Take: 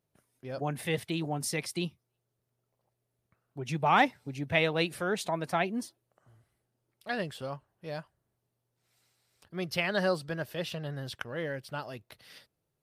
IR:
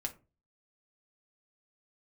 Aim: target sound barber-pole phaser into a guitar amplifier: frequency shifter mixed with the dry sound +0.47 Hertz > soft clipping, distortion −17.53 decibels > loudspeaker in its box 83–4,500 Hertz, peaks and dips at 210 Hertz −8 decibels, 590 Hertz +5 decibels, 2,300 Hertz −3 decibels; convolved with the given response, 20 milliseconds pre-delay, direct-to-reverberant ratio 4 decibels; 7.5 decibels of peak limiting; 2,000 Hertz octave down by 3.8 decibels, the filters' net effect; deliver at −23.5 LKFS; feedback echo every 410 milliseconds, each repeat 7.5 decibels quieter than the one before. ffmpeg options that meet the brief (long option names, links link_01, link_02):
-filter_complex "[0:a]equalizer=frequency=2000:width_type=o:gain=-3.5,alimiter=limit=-20dB:level=0:latency=1,aecho=1:1:410|820|1230|1640|2050:0.422|0.177|0.0744|0.0312|0.0131,asplit=2[link_01][link_02];[1:a]atrim=start_sample=2205,adelay=20[link_03];[link_02][link_03]afir=irnorm=-1:irlink=0,volume=-4dB[link_04];[link_01][link_04]amix=inputs=2:normalize=0,asplit=2[link_05][link_06];[link_06]afreqshift=0.47[link_07];[link_05][link_07]amix=inputs=2:normalize=1,asoftclip=threshold=-26dB,highpass=83,equalizer=frequency=210:width_type=q:width=4:gain=-8,equalizer=frequency=590:width_type=q:width=4:gain=5,equalizer=frequency=2300:width_type=q:width=4:gain=-3,lowpass=frequency=4500:width=0.5412,lowpass=frequency=4500:width=1.3066,volume=14dB"